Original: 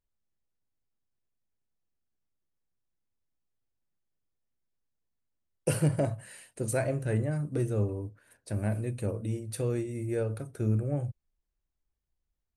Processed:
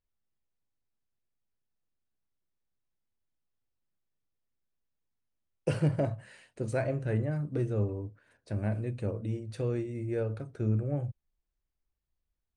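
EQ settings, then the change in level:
low-pass filter 9,300 Hz 12 dB per octave
high-frequency loss of the air 95 metres
−1.0 dB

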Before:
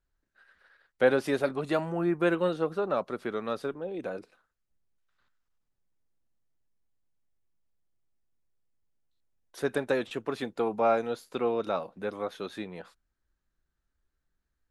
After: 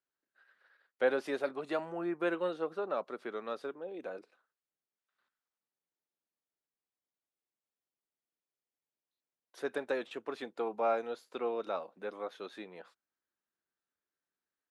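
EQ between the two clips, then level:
high-pass filter 310 Hz 12 dB per octave
high-shelf EQ 8,600 Hz −11 dB
−5.5 dB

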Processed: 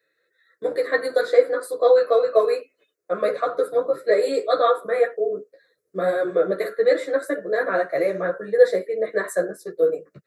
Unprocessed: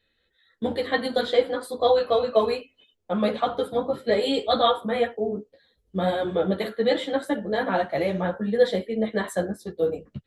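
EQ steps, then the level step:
high-pass filter 180 Hz 24 dB per octave
phaser with its sweep stopped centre 850 Hz, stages 6
+5.0 dB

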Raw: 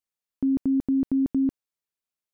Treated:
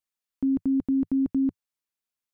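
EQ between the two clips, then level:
thirty-one-band graphic EQ 100 Hz −10 dB, 160 Hz −4 dB, 400 Hz −6 dB, 630 Hz −4 dB
0.0 dB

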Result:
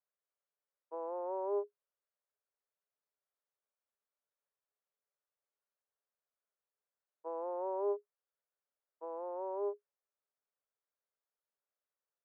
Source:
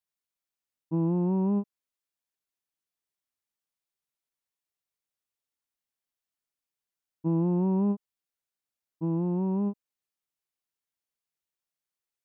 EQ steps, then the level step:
Chebyshev high-pass with heavy ripple 400 Hz, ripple 6 dB
low-pass filter 1,100 Hz 12 dB per octave
high-frequency loss of the air 220 metres
+7.0 dB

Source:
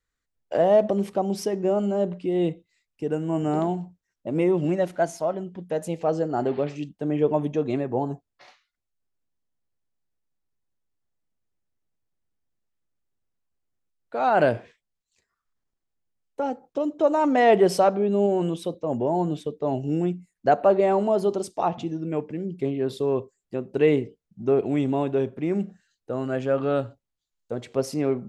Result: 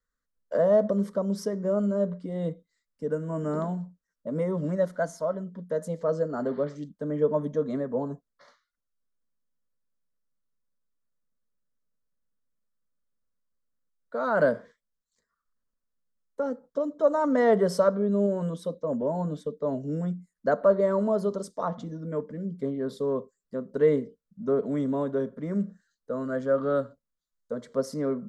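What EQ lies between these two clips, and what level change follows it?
high-shelf EQ 7,000 Hz −8.5 dB
phaser with its sweep stopped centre 520 Hz, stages 8
0.0 dB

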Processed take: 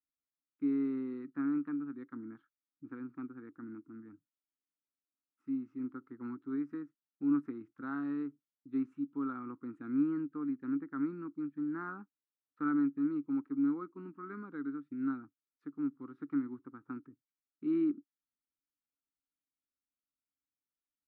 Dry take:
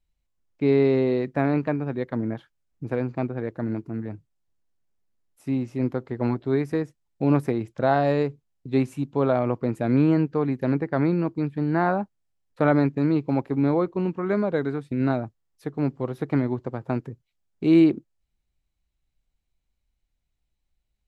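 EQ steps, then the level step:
pair of resonant band-passes 610 Hz, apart 2.2 octaves
−6.5 dB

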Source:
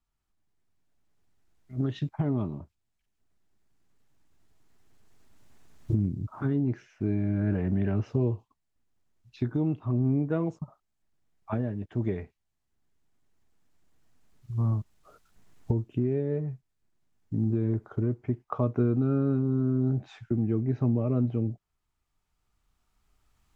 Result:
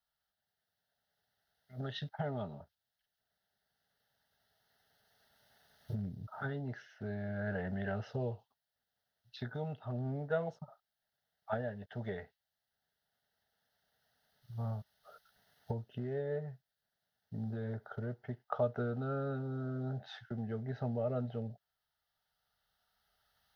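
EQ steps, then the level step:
high-pass filter 610 Hz 6 dB per octave
phaser with its sweep stopped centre 1,600 Hz, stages 8
+4.0 dB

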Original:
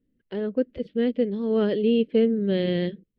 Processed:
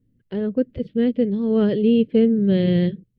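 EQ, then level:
parametric band 120 Hz +13 dB 0.79 octaves
low-shelf EQ 230 Hz +7 dB
0.0 dB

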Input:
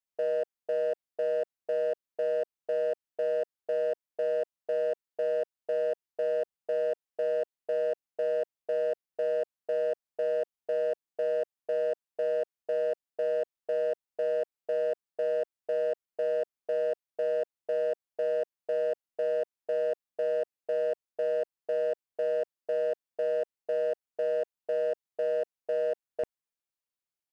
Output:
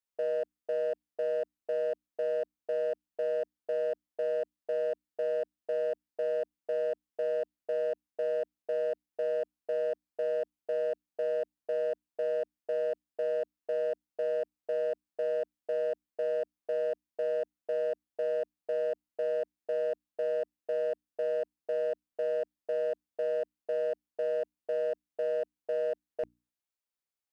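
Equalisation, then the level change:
mains-hum notches 60/120/180/240/300 Hz
−2.0 dB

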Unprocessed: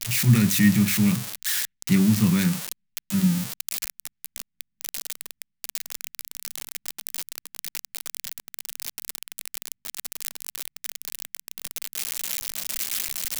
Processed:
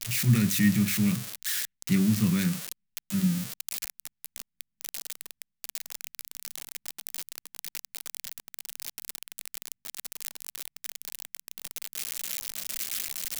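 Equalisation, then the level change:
dynamic equaliser 890 Hz, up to −6 dB, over −55 dBFS, Q 3.5
−4.5 dB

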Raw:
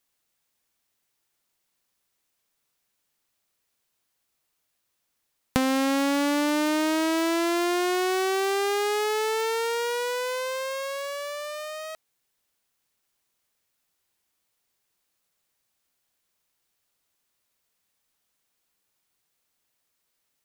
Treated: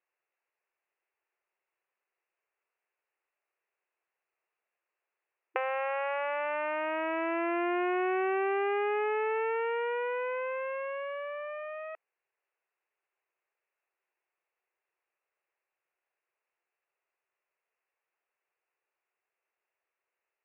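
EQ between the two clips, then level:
linear-phase brick-wall high-pass 330 Hz
Chebyshev low-pass filter 2,700 Hz, order 6
−3.5 dB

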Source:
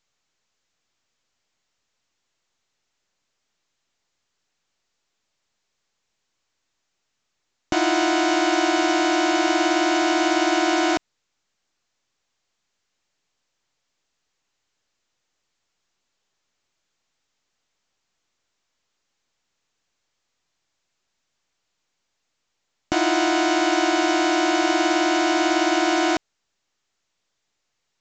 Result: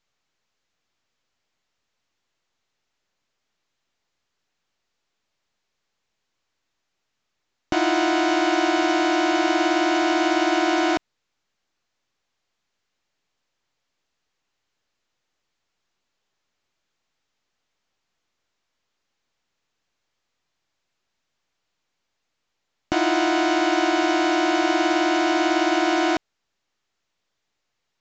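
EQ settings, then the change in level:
high-frequency loss of the air 72 metres
0.0 dB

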